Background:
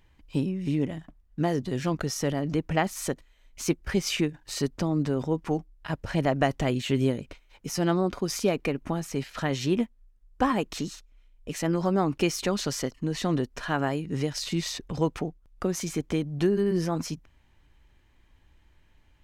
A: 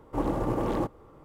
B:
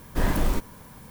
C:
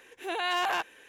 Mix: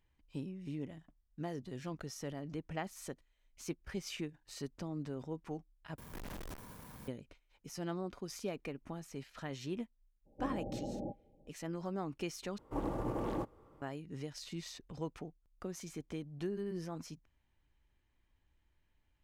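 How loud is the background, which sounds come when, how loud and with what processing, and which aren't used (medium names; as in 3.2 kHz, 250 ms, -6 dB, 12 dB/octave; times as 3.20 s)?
background -15 dB
5.98 s: replace with B -2.5 dB + valve stage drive 41 dB, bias 0.55
10.25 s: add A -8 dB, fades 0.02 s + rippled Chebyshev low-pass 830 Hz, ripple 9 dB
12.58 s: replace with A -9 dB
not used: C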